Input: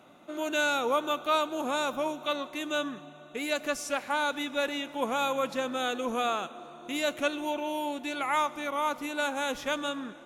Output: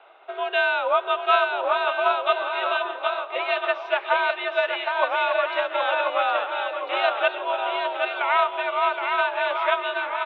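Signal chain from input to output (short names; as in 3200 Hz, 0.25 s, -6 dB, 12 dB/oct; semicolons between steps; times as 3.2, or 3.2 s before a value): bouncing-ball echo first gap 0.77 s, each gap 0.75×, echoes 5; transient shaper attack +4 dB, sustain -1 dB; mistuned SSB +66 Hz 440–3300 Hz; gain +5.5 dB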